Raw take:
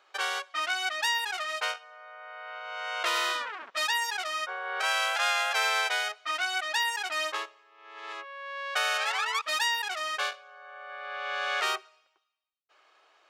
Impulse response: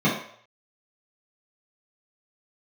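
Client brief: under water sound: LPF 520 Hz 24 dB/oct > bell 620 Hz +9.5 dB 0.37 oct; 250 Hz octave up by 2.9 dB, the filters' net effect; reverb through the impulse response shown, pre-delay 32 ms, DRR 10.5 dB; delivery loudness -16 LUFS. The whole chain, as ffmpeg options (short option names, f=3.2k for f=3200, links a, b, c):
-filter_complex "[0:a]equalizer=f=250:t=o:g=4.5,asplit=2[a][b];[1:a]atrim=start_sample=2205,adelay=32[c];[b][c]afir=irnorm=-1:irlink=0,volume=-27dB[d];[a][d]amix=inputs=2:normalize=0,lowpass=f=520:w=0.5412,lowpass=f=520:w=1.3066,equalizer=f=620:t=o:w=0.37:g=9.5,volume=26dB"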